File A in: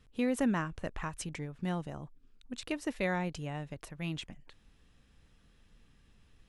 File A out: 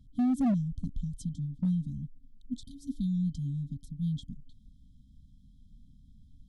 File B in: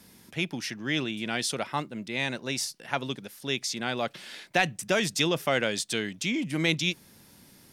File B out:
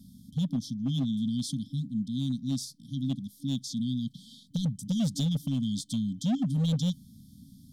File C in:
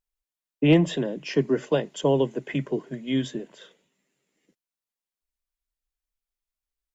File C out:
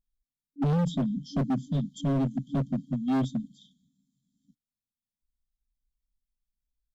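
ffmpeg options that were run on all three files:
-af "afftfilt=real='re*(1-between(b*sr/4096,290,3100))':imag='im*(1-between(b*sr/4096,290,3100))':win_size=4096:overlap=0.75,tiltshelf=f=970:g=8,asoftclip=type=hard:threshold=0.0708"

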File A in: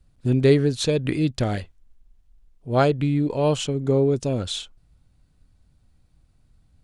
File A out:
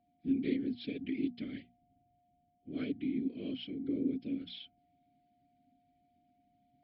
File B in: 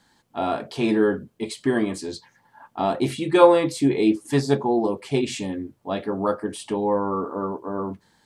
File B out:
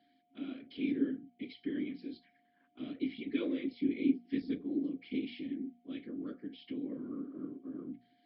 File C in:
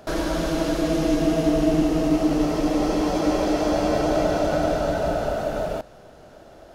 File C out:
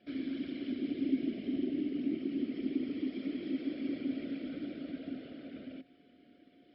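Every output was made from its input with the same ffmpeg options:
-filter_complex "[0:a]afftfilt=real='hypot(re,im)*cos(2*PI*random(0))':imag='hypot(re,im)*sin(2*PI*random(1))':win_size=512:overlap=0.75,bandreject=f=60:t=h:w=6,bandreject=f=120:t=h:w=6,bandreject=f=180:t=h:w=6,bandreject=f=240:t=h:w=6,asplit=2[s0][s1];[s1]acompressor=threshold=0.0141:ratio=6,volume=1[s2];[s0][s2]amix=inputs=2:normalize=0,aeval=exprs='val(0)+0.00891*sin(2*PI*710*n/s)':c=same,areverse,acompressor=mode=upward:threshold=0.0141:ratio=2.5,areverse,asplit=3[s3][s4][s5];[s3]bandpass=f=270:t=q:w=8,volume=1[s6];[s4]bandpass=f=2290:t=q:w=8,volume=0.501[s7];[s5]bandpass=f=3010:t=q:w=8,volume=0.355[s8];[s6][s7][s8]amix=inputs=3:normalize=0" -ar 12000 -c:a libmp3lame -b:a 64k

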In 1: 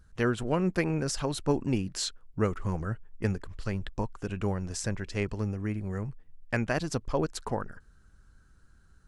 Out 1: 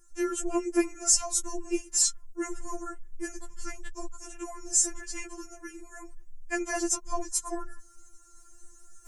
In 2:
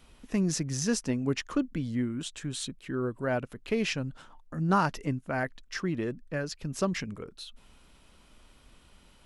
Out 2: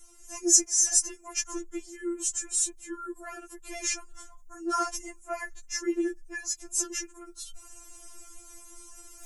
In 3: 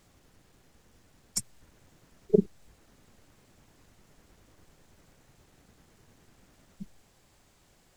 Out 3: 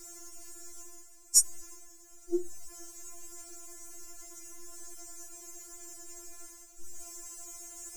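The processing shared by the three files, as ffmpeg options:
-af "areverse,acompressor=mode=upward:threshold=0.00794:ratio=2.5,areverse,highshelf=f=5100:t=q:w=3:g=10.5,afftfilt=real='re*4*eq(mod(b,16),0)':imag='im*4*eq(mod(b,16),0)':win_size=2048:overlap=0.75,volume=1.19"

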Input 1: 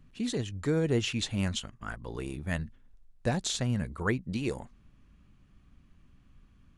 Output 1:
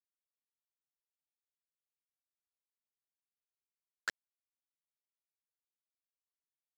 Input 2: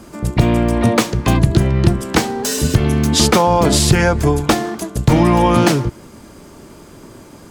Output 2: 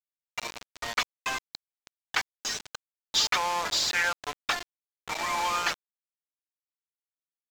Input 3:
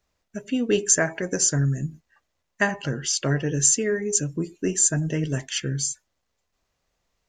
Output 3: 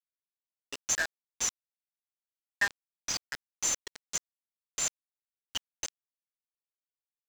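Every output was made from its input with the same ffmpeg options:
-filter_complex "[0:a]asplit=2[s0][s1];[s1]asplit=4[s2][s3][s4][s5];[s2]adelay=207,afreqshift=110,volume=0.0708[s6];[s3]adelay=414,afreqshift=220,volume=0.0432[s7];[s4]adelay=621,afreqshift=330,volume=0.0263[s8];[s5]adelay=828,afreqshift=440,volume=0.016[s9];[s6][s7][s8][s9]amix=inputs=4:normalize=0[s10];[s0][s10]amix=inputs=2:normalize=0,afftfilt=real='re*gte(hypot(re,im),0.141)':imag='im*gte(hypot(re,im),0.141)':win_size=1024:overlap=0.75,asplit=2[s11][s12];[s12]highpass=f=720:p=1,volume=5.01,asoftclip=type=tanh:threshold=0.944[s13];[s11][s13]amix=inputs=2:normalize=0,lowpass=f=3200:p=1,volume=0.501,highpass=1500,aresample=16000,acrusher=bits=3:mix=0:aa=0.000001,aresample=44100,adynamicsmooth=sensitivity=6.5:basefreq=2200,volume=0.376"

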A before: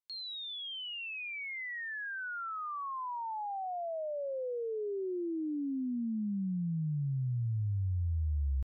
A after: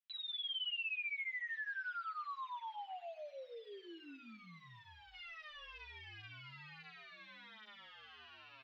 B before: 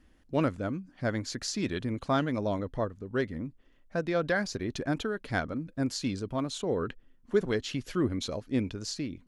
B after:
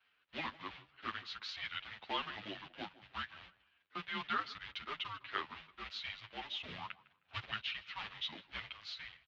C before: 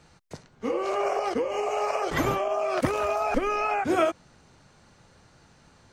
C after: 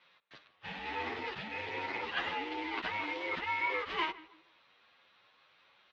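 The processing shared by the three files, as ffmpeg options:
-filter_complex "[0:a]acrusher=bits=3:mode=log:mix=0:aa=0.000001,asplit=2[s0][s1];[s1]adelay=156,lowpass=f=2300:p=1,volume=0.133,asplit=2[s2][s3];[s3]adelay=156,lowpass=f=2300:p=1,volume=0.32,asplit=2[s4][s5];[s5]adelay=156,lowpass=f=2300:p=1,volume=0.32[s6];[s0][s2][s4][s6]amix=inputs=4:normalize=0,highpass=f=200:t=q:w=0.5412,highpass=f=200:t=q:w=1.307,lowpass=f=3600:t=q:w=0.5176,lowpass=f=3600:t=q:w=0.7071,lowpass=f=3600:t=q:w=1.932,afreqshift=-320,aderivative,asplit=2[s7][s8];[s8]adelay=9.3,afreqshift=1.8[s9];[s7][s9]amix=inputs=2:normalize=1,volume=4.47"

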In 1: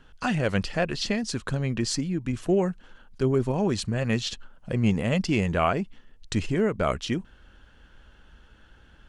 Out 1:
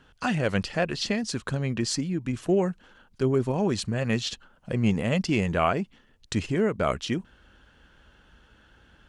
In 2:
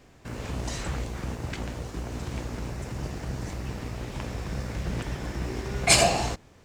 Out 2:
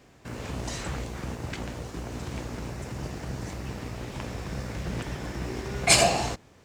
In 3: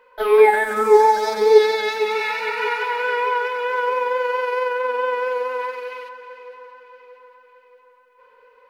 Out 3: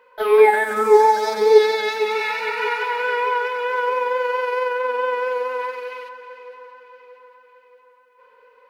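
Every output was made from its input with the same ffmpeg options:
-af "highpass=f=69:p=1"

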